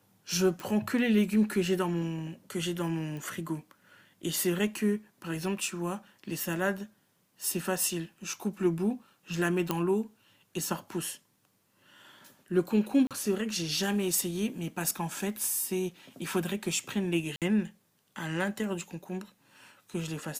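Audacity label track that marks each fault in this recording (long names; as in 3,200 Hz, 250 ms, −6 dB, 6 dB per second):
0.600000	0.600000	click
3.170000	3.170000	click −29 dBFS
9.710000	9.710000	click −13 dBFS
13.070000	13.110000	drop-out 37 ms
17.360000	17.420000	drop-out 57 ms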